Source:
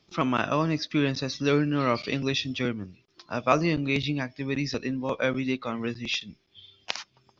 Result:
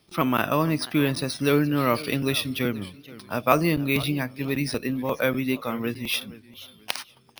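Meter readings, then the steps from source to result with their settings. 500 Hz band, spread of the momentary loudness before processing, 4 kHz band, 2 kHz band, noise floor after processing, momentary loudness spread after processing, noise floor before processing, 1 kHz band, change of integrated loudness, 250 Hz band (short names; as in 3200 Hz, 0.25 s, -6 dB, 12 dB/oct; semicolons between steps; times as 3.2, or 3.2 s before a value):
+2.5 dB, 11 LU, +1.5 dB, +2.5 dB, -55 dBFS, 11 LU, -68 dBFS, +2.5 dB, +2.5 dB, +2.5 dB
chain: careless resampling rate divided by 3×, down none, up hold; warbling echo 0.479 s, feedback 31%, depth 181 cents, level -18.5 dB; gain +2.5 dB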